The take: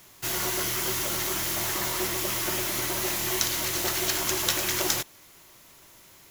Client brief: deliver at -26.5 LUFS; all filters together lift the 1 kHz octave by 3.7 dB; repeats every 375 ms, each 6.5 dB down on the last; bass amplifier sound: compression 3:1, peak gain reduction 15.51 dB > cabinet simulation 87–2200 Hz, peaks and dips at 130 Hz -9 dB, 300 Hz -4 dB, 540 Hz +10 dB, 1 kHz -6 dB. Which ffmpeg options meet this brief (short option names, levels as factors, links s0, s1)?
-af "equalizer=f=1000:t=o:g=7.5,aecho=1:1:375|750|1125|1500|1875|2250:0.473|0.222|0.105|0.0491|0.0231|0.0109,acompressor=threshold=0.01:ratio=3,highpass=f=87:w=0.5412,highpass=f=87:w=1.3066,equalizer=f=130:t=q:w=4:g=-9,equalizer=f=300:t=q:w=4:g=-4,equalizer=f=540:t=q:w=4:g=10,equalizer=f=1000:t=q:w=4:g=-6,lowpass=f=2200:w=0.5412,lowpass=f=2200:w=1.3066,volume=6.31"